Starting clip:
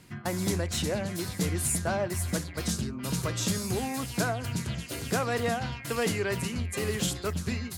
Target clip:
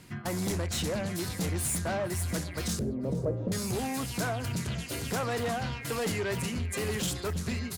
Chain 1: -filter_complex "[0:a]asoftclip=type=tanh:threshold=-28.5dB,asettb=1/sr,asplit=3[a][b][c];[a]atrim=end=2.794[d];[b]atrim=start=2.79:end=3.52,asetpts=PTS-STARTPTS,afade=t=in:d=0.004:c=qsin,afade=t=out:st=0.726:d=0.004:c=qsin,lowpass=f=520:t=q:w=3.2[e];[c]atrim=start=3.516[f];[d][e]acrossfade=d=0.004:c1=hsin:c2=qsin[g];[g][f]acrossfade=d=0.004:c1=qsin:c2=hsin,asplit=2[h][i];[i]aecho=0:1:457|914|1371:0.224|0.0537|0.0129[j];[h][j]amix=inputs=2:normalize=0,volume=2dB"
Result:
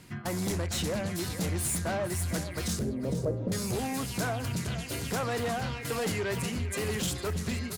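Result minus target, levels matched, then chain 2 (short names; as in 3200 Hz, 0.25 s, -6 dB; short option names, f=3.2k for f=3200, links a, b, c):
echo-to-direct +8.5 dB
-filter_complex "[0:a]asoftclip=type=tanh:threshold=-28.5dB,asettb=1/sr,asplit=3[a][b][c];[a]atrim=end=2.794[d];[b]atrim=start=2.79:end=3.52,asetpts=PTS-STARTPTS,afade=t=in:d=0.004:c=qsin,afade=t=out:st=0.726:d=0.004:c=qsin,lowpass=f=520:t=q:w=3.2[e];[c]atrim=start=3.516[f];[d][e]acrossfade=d=0.004:c1=hsin:c2=qsin[g];[g][f]acrossfade=d=0.004:c1=qsin:c2=hsin,asplit=2[h][i];[i]aecho=0:1:457|914:0.0841|0.0202[j];[h][j]amix=inputs=2:normalize=0,volume=2dB"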